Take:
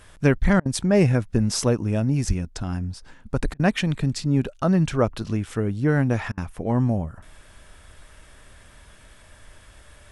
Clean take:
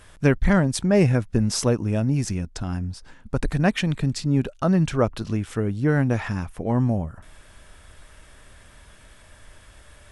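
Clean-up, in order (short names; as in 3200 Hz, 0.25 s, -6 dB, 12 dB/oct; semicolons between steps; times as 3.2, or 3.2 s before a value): de-plosive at 2.27; interpolate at 0.6/3.54/6.32, 54 ms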